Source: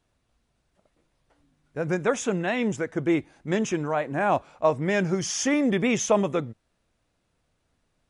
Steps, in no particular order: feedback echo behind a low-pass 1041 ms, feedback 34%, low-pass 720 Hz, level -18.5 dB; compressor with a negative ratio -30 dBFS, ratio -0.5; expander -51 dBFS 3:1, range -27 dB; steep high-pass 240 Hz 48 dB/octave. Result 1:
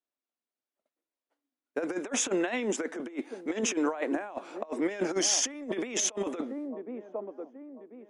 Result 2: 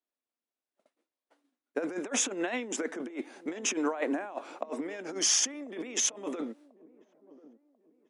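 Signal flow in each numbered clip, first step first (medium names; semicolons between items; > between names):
steep high-pass > expander > feedback echo behind a low-pass > compressor with a negative ratio; compressor with a negative ratio > steep high-pass > expander > feedback echo behind a low-pass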